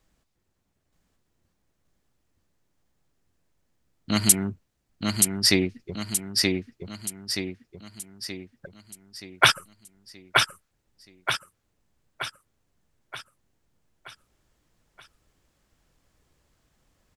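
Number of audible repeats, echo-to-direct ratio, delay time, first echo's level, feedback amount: 6, −2.0 dB, 926 ms, −3.0 dB, 48%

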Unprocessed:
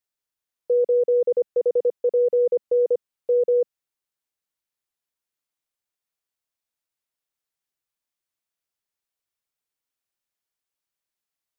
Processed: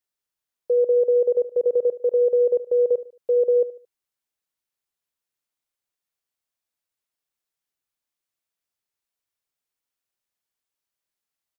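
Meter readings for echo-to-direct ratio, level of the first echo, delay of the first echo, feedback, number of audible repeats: −15.5 dB, −16.0 dB, 74 ms, 35%, 3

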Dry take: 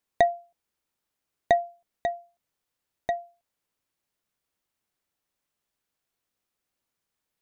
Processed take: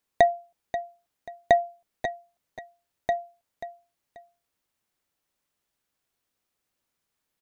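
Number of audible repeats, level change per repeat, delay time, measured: 2, −11.5 dB, 535 ms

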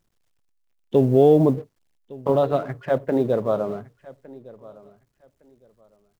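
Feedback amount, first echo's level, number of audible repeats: 21%, −21.0 dB, 2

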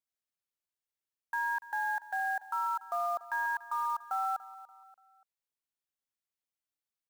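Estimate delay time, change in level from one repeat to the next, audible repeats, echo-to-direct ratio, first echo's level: 289 ms, −8.0 dB, 3, −16.5 dB, −17.0 dB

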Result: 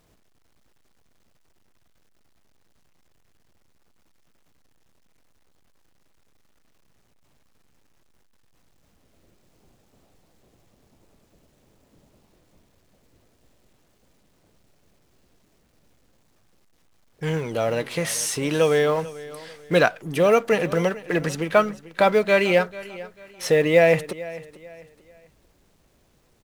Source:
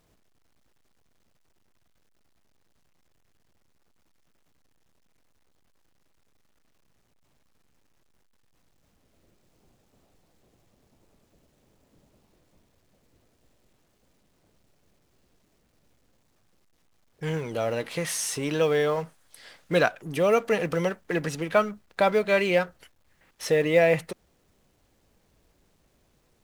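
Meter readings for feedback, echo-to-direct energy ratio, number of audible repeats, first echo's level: 33%, −17.5 dB, 2, −18.0 dB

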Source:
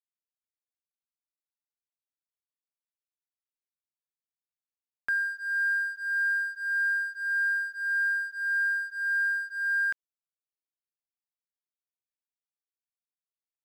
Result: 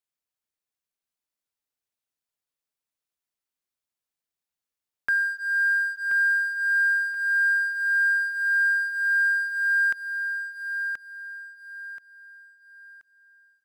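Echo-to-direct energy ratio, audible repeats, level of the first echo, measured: −6.0 dB, 3, −6.5 dB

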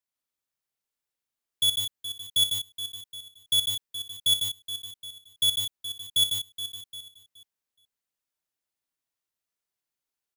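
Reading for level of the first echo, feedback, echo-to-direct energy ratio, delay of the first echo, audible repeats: −11.5 dB, repeats not evenly spaced, −1.0 dB, 60 ms, 9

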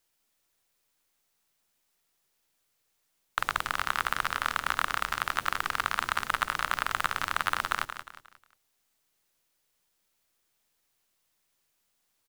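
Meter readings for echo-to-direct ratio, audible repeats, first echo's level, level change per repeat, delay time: −9.5 dB, 3, −10.0 dB, −8.5 dB, 179 ms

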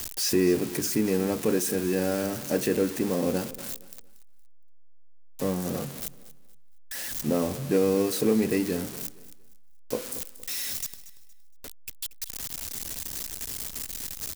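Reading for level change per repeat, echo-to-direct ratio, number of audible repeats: −10.5 dB, −16.5 dB, 2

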